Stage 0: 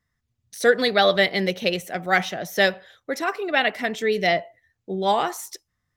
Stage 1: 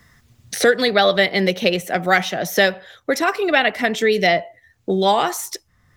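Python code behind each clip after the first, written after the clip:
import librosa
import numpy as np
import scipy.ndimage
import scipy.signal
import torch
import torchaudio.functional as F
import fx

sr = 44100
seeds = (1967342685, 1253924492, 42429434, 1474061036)

y = fx.band_squash(x, sr, depth_pct=70)
y = y * librosa.db_to_amplitude(4.0)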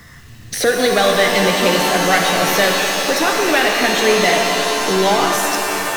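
y = fx.power_curve(x, sr, exponent=0.7)
y = fx.rev_shimmer(y, sr, seeds[0], rt60_s=3.7, semitones=7, shimmer_db=-2, drr_db=1.5)
y = y * librosa.db_to_amplitude(-4.0)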